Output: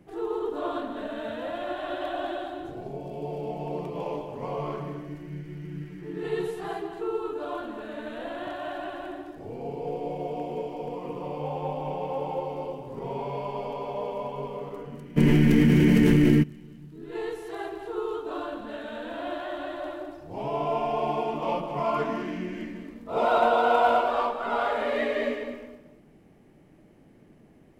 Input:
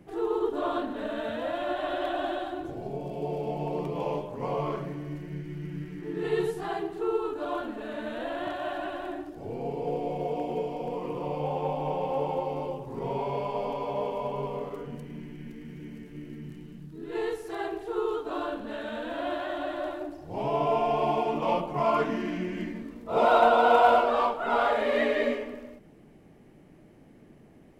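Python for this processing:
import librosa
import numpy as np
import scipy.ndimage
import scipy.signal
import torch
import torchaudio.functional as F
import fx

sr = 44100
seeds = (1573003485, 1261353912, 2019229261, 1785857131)

p1 = x + fx.echo_single(x, sr, ms=210, db=-9.0, dry=0)
p2 = fx.env_flatten(p1, sr, amount_pct=100, at=(15.16, 16.42), fade=0.02)
y = p2 * librosa.db_to_amplitude(-2.0)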